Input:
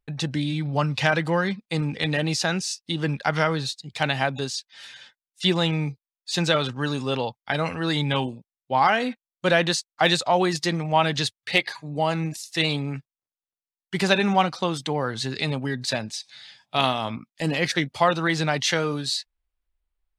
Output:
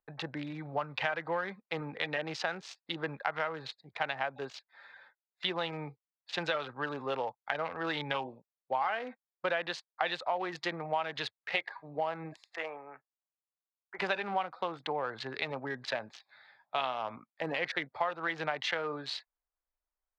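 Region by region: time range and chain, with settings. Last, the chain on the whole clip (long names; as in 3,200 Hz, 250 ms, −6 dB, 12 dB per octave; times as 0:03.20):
0:12.56–0:13.99: elliptic low-pass filter 2,900 Hz + three-way crossover with the lows and the highs turned down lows −22 dB, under 460 Hz, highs −14 dB, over 2,100 Hz
whole clip: adaptive Wiener filter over 15 samples; three-way crossover with the lows and the highs turned down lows −18 dB, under 460 Hz, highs −24 dB, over 3,600 Hz; downward compressor 4 to 1, threshold −30 dBFS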